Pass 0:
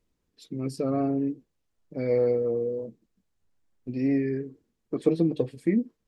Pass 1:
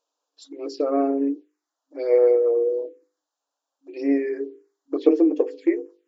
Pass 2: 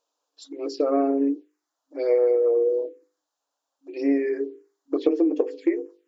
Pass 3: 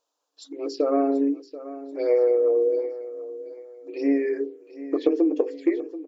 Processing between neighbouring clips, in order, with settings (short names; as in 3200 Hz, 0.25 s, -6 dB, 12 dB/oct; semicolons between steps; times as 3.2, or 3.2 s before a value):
envelope phaser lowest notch 350 Hz, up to 3900 Hz, full sweep at -23.5 dBFS; notches 50/100/150/200/250/300/350/400/450/500 Hz; FFT band-pass 270–7500 Hz; gain +7.5 dB
compressor, threshold -18 dBFS, peak gain reduction 8 dB; gain +1.5 dB
feedback echo 0.734 s, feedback 33%, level -15 dB